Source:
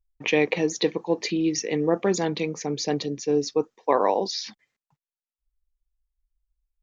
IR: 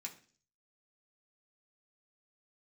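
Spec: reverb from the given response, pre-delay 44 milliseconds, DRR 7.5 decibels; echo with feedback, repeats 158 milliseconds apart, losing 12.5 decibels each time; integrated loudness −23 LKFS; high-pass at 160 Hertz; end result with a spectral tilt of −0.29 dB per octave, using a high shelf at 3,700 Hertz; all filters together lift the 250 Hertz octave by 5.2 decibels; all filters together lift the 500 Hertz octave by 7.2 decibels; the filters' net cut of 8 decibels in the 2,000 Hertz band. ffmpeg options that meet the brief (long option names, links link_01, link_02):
-filter_complex "[0:a]highpass=160,equalizer=frequency=250:width_type=o:gain=4.5,equalizer=frequency=500:width_type=o:gain=7.5,equalizer=frequency=2000:width_type=o:gain=-8,highshelf=frequency=3700:gain=-7,aecho=1:1:158|316|474:0.237|0.0569|0.0137,asplit=2[link_01][link_02];[1:a]atrim=start_sample=2205,adelay=44[link_03];[link_02][link_03]afir=irnorm=-1:irlink=0,volume=-4dB[link_04];[link_01][link_04]amix=inputs=2:normalize=0,volume=-4dB"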